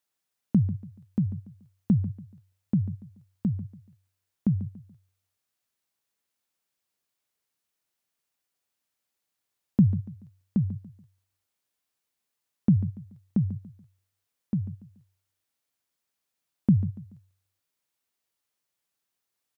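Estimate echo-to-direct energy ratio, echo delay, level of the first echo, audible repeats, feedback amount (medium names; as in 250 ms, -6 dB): -13.5 dB, 143 ms, -14.0 dB, 3, 34%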